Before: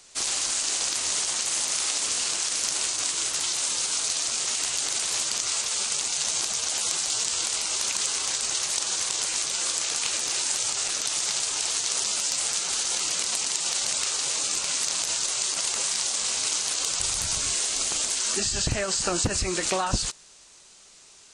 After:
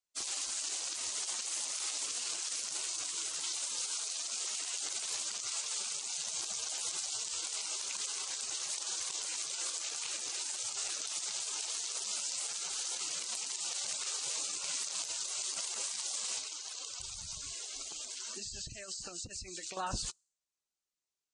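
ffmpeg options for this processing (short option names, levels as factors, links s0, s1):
-filter_complex "[0:a]asettb=1/sr,asplit=3[s0][s1][s2];[s0]atrim=end=3.864[s3];[s1]atrim=start=3.86:end=4.8,asetpts=PTS-STARTPTS,afade=t=in:d=0.004:c=qsin,afade=t=out:st=0.936:d=0.004:c=qsin,highpass=180[s4];[s2]atrim=start=4.796[s5];[s3][s4]acrossfade=d=0.004:c1=hsin:c2=qsin[s6];[s6][s5]acrossfade=d=0.004:c1=qsin:c2=hsin,asettb=1/sr,asplit=3[s7][s8][s9];[s7]atrim=end=16.384[s10];[s8]atrim=start=16.38:end=19.77,asetpts=PTS-STARTPTS,afade=t=in:d=0.004:c=qsin,afade=t=out:st=3.386:d=0.004:c=qsin,acrossover=split=2600|6300[s11][s12][s13];[s11]acompressor=threshold=0.01:ratio=4[s14];[s12]acompressor=threshold=0.02:ratio=4[s15];[s13]acompressor=threshold=0.0112:ratio=4[s16];[s14][s15][s16]amix=inputs=3:normalize=0[s17];[s9]atrim=start=19.766[s18];[s10][s17]acrossfade=d=0.004:c1=hsin:c2=qsin[s19];[s19][s18]acrossfade=d=0.004:c1=qsin:c2=hsin,afftdn=nr=33:nf=-38,alimiter=limit=0.133:level=0:latency=1:release=53,volume=0.376"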